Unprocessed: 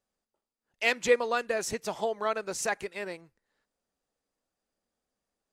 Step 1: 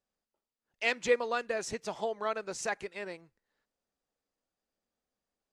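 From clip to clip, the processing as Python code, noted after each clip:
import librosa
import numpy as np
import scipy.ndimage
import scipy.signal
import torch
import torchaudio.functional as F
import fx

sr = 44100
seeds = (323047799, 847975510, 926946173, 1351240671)

y = scipy.signal.sosfilt(scipy.signal.butter(2, 7800.0, 'lowpass', fs=sr, output='sos'), x)
y = F.gain(torch.from_numpy(y), -3.5).numpy()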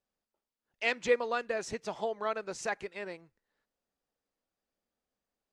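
y = fx.high_shelf(x, sr, hz=7300.0, db=-8.0)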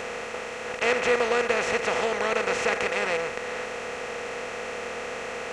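y = fx.bin_compress(x, sr, power=0.2)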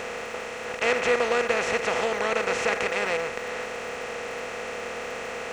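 y = fx.dmg_crackle(x, sr, seeds[0], per_s=360.0, level_db=-44.0)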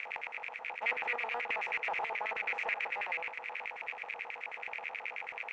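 y = fx.rattle_buzz(x, sr, strikes_db=-45.0, level_db=-18.0)
y = fx.filter_lfo_bandpass(y, sr, shape='square', hz=9.3, low_hz=850.0, high_hz=2200.0, q=6.7)
y = fx.doppler_dist(y, sr, depth_ms=0.15)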